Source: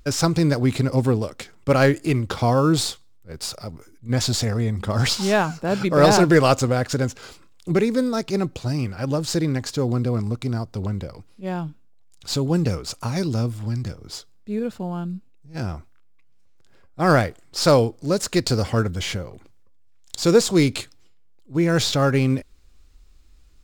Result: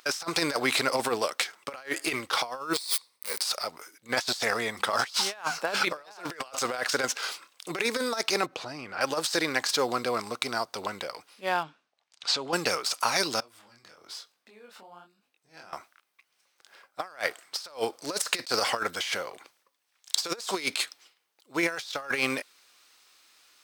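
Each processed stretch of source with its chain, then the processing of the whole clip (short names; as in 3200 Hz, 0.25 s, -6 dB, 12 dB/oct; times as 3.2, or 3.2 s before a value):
2.73–3.41 switching spikes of -27 dBFS + ripple EQ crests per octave 0.92, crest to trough 8 dB + compressor 1.5:1, threshold -27 dBFS
8.46–9.01 LPF 2300 Hz 6 dB/oct + low shelf 400 Hz +7.5 dB + compressor 2.5:1, threshold -28 dBFS
11.63–12.53 compressor 4:1, threshold -24 dBFS + air absorption 100 m
13.4–15.73 compressor, threshold -41 dBFS + tone controls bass +1 dB, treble -3 dB + chorus 1.1 Hz, delay 19 ms, depth 7.1 ms
whole clip: HPF 900 Hz 12 dB/oct; notch 7100 Hz, Q 9.3; negative-ratio compressor -33 dBFS, ratio -0.5; gain +4.5 dB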